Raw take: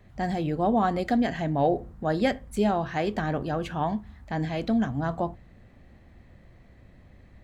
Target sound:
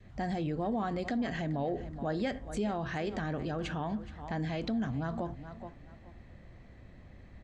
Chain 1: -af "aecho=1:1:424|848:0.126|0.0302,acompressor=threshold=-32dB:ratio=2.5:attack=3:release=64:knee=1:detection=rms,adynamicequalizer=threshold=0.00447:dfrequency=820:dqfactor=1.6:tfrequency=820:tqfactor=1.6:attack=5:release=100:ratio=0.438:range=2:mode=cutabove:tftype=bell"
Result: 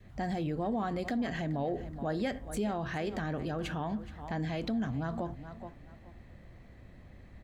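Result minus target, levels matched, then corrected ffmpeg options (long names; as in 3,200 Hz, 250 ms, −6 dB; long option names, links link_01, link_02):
8,000 Hz band +2.5 dB
-af "aecho=1:1:424|848:0.126|0.0302,acompressor=threshold=-32dB:ratio=2.5:attack=3:release=64:knee=1:detection=rms,lowpass=frequency=8000:width=0.5412,lowpass=frequency=8000:width=1.3066,adynamicequalizer=threshold=0.00447:dfrequency=820:dqfactor=1.6:tfrequency=820:tqfactor=1.6:attack=5:release=100:ratio=0.438:range=2:mode=cutabove:tftype=bell"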